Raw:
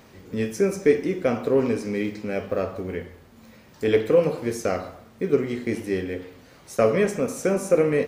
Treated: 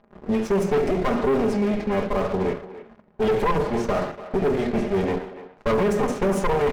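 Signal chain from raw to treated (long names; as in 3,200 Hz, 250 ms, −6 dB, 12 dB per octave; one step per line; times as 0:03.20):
lower of the sound and its delayed copy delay 4.9 ms
mains-hum notches 60/120/180/240/300/360/420/480/540/600 Hz
low-pass that shuts in the quiet parts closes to 970 Hz, open at −21.5 dBFS
high-shelf EQ 2,100 Hz −10 dB
leveller curve on the samples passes 3
brickwall limiter −16 dBFS, peak gain reduction 6.5 dB
tempo change 1.2×
far-end echo of a speakerphone 290 ms, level −13 dB
on a send at −22 dB: convolution reverb RT60 1.2 s, pre-delay 39 ms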